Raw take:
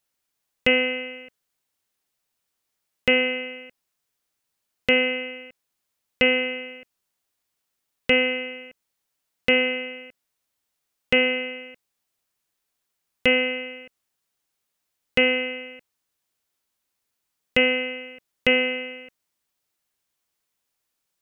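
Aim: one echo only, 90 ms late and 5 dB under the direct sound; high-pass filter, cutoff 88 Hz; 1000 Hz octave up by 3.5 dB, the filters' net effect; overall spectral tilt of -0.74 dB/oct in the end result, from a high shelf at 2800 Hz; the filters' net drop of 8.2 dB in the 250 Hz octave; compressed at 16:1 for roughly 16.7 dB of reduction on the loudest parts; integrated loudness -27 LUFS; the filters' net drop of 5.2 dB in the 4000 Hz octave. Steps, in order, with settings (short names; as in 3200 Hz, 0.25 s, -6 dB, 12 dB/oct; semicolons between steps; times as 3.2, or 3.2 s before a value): HPF 88 Hz; bell 250 Hz -8.5 dB; bell 1000 Hz +7 dB; high shelf 2800 Hz -7 dB; bell 4000 Hz -4 dB; compressor 16:1, threshold -33 dBFS; echo 90 ms -5 dB; gain +11 dB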